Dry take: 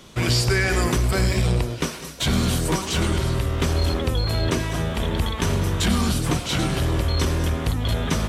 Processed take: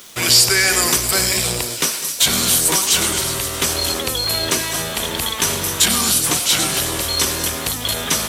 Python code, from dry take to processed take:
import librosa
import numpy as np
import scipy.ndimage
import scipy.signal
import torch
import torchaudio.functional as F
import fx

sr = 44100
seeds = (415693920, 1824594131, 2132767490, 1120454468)

y = fx.riaa(x, sr, side='recording')
y = np.where(np.abs(y) >= 10.0 ** (-41.0 / 20.0), y, 0.0)
y = fx.echo_wet_highpass(y, sr, ms=264, feedback_pct=66, hz=4000.0, wet_db=-10.0)
y = y * 10.0 ** (4.0 / 20.0)